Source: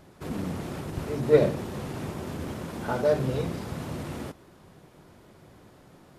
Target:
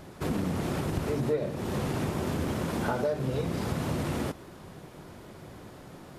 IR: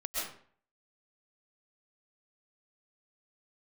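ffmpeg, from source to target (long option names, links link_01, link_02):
-af "acompressor=threshold=-32dB:ratio=10,volume=6.5dB"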